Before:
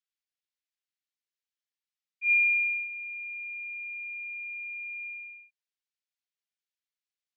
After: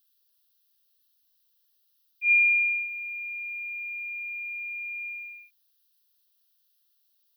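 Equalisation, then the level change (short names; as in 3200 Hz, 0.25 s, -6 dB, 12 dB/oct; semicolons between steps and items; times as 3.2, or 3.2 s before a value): tilt +6 dB/oct; fixed phaser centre 2200 Hz, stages 6; +6.5 dB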